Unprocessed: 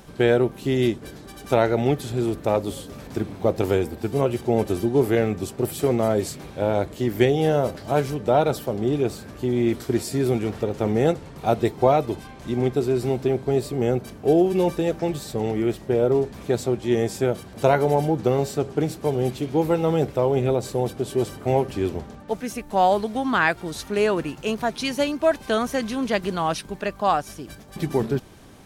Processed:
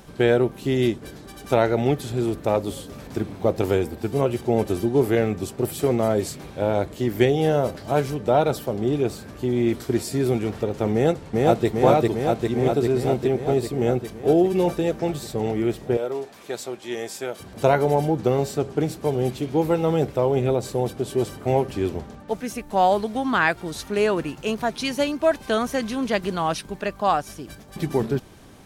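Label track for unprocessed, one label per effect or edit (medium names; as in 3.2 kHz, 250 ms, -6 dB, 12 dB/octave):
10.930000	11.670000	echo throw 400 ms, feedback 75%, level -0.5 dB
15.970000	17.400000	high-pass 1 kHz 6 dB/octave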